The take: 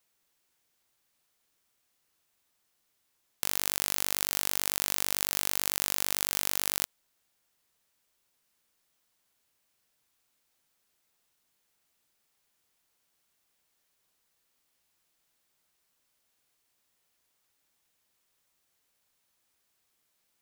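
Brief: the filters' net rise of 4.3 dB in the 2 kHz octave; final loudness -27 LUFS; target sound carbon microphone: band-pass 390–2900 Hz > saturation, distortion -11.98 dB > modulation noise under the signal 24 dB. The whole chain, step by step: band-pass 390–2900 Hz; peaking EQ 2 kHz +6.5 dB; saturation -23.5 dBFS; modulation noise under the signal 24 dB; trim +13 dB

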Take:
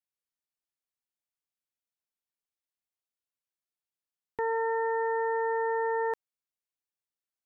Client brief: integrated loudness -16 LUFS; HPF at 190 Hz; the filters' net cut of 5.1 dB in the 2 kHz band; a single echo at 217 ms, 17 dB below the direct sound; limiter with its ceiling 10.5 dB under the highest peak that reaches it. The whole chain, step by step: high-pass 190 Hz; peaking EQ 2 kHz -5.5 dB; peak limiter -33 dBFS; delay 217 ms -17 dB; trim +25 dB

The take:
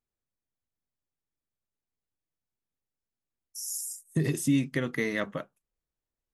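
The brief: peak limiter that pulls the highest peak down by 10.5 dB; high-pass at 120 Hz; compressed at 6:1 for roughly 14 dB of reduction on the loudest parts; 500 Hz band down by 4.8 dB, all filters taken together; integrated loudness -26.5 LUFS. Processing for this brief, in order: high-pass 120 Hz; peaking EQ 500 Hz -6 dB; compression 6:1, threshold -37 dBFS; trim +18.5 dB; peak limiter -17 dBFS

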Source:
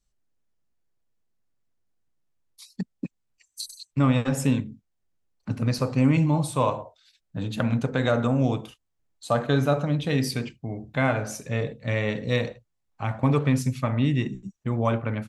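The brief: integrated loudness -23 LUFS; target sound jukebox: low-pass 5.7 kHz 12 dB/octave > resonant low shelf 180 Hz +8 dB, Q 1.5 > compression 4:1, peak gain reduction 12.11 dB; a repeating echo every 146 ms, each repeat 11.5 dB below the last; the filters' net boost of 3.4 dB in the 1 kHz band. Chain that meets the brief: low-pass 5.7 kHz 12 dB/octave; resonant low shelf 180 Hz +8 dB, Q 1.5; peaking EQ 1 kHz +4.5 dB; feedback delay 146 ms, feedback 27%, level -11.5 dB; compression 4:1, threshold -24 dBFS; trim +5 dB

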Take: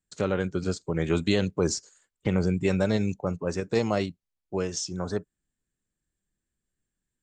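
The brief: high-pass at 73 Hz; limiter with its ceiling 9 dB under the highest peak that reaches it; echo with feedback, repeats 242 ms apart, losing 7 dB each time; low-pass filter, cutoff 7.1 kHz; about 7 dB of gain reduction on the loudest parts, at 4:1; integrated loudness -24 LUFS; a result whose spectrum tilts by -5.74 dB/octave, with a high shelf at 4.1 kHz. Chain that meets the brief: high-pass 73 Hz; low-pass 7.1 kHz; treble shelf 4.1 kHz -6.5 dB; compression 4:1, threshold -28 dBFS; peak limiter -25.5 dBFS; feedback delay 242 ms, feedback 45%, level -7 dB; trim +12.5 dB

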